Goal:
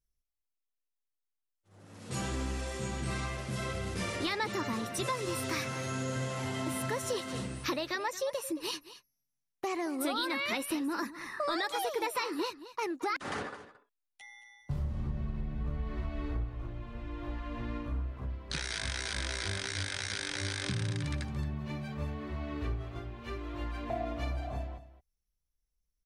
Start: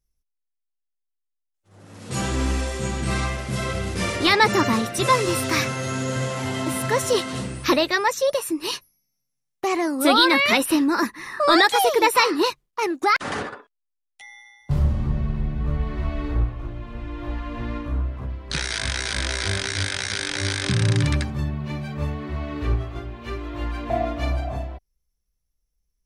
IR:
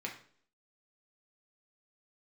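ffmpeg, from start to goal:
-af "acompressor=threshold=-23dB:ratio=4,aecho=1:1:223:0.178,volume=-8dB"

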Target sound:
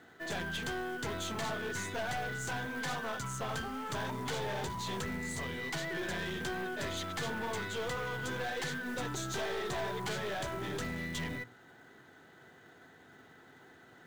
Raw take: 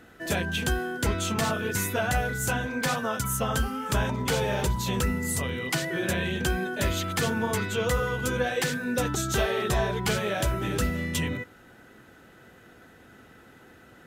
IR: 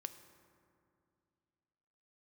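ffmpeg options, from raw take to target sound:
-filter_complex "[0:a]highpass=150,equalizer=f=210:t=q:w=4:g=-8,equalizer=f=310:t=q:w=4:g=-5,equalizer=f=530:t=q:w=4:g=-8,equalizer=f=1.3k:t=q:w=4:g=-5,equalizer=f=2.6k:t=q:w=4:g=-9,equalizer=f=5.3k:t=q:w=4:g=-8,lowpass=f=6.6k:w=0.5412,lowpass=f=6.6k:w=1.3066,acrossover=split=2000[a][b];[a]acrusher=bits=4:mode=log:mix=0:aa=0.000001[c];[c][b]amix=inputs=2:normalize=0,bandreject=f=60:t=h:w=6,bandreject=f=120:t=h:w=6,bandreject=f=180:t=h:w=6,bandreject=f=240:t=h:w=6,aeval=exprs='(tanh(44.7*val(0)+0.35)-tanh(0.35))/44.7':c=same"

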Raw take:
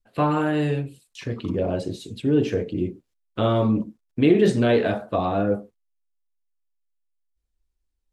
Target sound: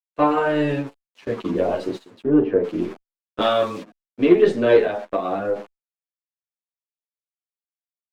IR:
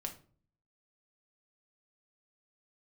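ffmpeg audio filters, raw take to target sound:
-filter_complex "[0:a]aeval=exprs='val(0)*gte(abs(val(0)),0.0112)':c=same,highpass=310,aemphasis=mode=reproduction:type=75fm,dynaudnorm=f=110:g=3:m=13dB,aeval=exprs='0.891*(cos(1*acos(clip(val(0)/0.891,-1,1)))-cos(1*PI/2))+0.0794*(cos(3*acos(clip(val(0)/0.891,-1,1)))-cos(3*PI/2))+0.00708*(cos(5*acos(clip(val(0)/0.891,-1,1)))-cos(5*PI/2))+0.0112*(cos(6*acos(clip(val(0)/0.891,-1,1)))-cos(6*PI/2))':c=same,asettb=1/sr,asplit=3[a][b][c];[a]atrim=end=2.234[d];[b]atrim=start=2.23:end=2.64,asetpts=PTS-STARTPTS,afade=t=in:d=0.004:c=qsin,afade=t=out:st=0.406:d=0.004:c=qsin,lowpass=1.4k[e];[c]atrim=start=2.636[f];[d][e]acrossfade=d=0.004:c1=hsin:c2=qsin[g];[g][f]acrossfade=d=0.004:c1=qsin:c2=hsin,asettb=1/sr,asplit=3[h][i][j];[h]atrim=end=3.414[k];[i]atrim=start=3.41:end=3.83,asetpts=PTS-STARTPTS,afade=t=in:d=0.004:c=qsin,afade=t=out:st=0.416:d=0.004:c=qsin,tiltshelf=f=970:g=-9[l];[j]atrim=start=3.826[m];[k][l]acrossfade=d=0.004:c1=hsin:c2=qsin[n];[n][m]acrossfade=d=0.004:c1=qsin:c2=hsin,agate=range=-12dB:threshold=-26dB:ratio=16:detection=peak,asettb=1/sr,asplit=3[o][p][q];[o]atrim=end=4.834[r];[p]atrim=start=4.83:end=5.56,asetpts=PTS-STARTPTS,afade=t=in:d=0.004:c=qsin,afade=t=out:st=0.726:d=0.004:c=qsin,acompressor=threshold=-18dB:ratio=3[s];[q]atrim=start=5.556[t];[r][s]acrossfade=d=0.004:c1=hsin:c2=qsin[u];[u][t]acrossfade=d=0.004:c1=qsin:c2=hsin,asplit=2[v][w];[w]adelay=9.4,afreqshift=-1.8[x];[v][x]amix=inputs=2:normalize=1"

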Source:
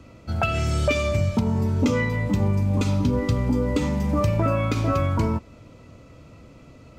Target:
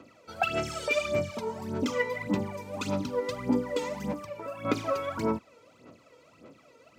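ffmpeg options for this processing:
-filter_complex "[0:a]highpass=310,aphaser=in_gain=1:out_gain=1:delay=2.2:decay=0.71:speed=1.7:type=sinusoidal,asettb=1/sr,asplit=3[a][b][c];[a]atrim=end=4.124[d];[b]atrim=start=4.12:end=4.65,asetpts=PTS-STARTPTS,afade=t=in:d=0.004:c=qsin,afade=t=out:st=0.526:d=0.004:c=qsin,acrossover=split=1500|5000[e][f][g];[e]acompressor=threshold=-30dB:ratio=4[h];[f]acompressor=threshold=-46dB:ratio=4[i];[g]acompressor=threshold=-54dB:ratio=4[j];[h][i][j]amix=inputs=3:normalize=0[k];[c]atrim=start=4.646[l];[d][k]acrossfade=d=0.004:c1=hsin:c2=qsin[m];[m][l]acrossfade=d=0.004:c1=qsin:c2=hsin,volume=-7dB"

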